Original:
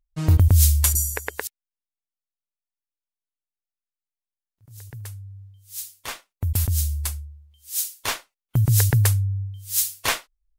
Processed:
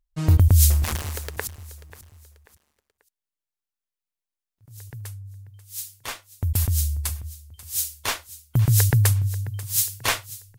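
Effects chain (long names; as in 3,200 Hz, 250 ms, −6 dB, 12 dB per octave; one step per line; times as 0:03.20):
0:00.70–0:01.37: gap after every zero crossing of 0.22 ms
repeating echo 538 ms, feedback 35%, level −17 dB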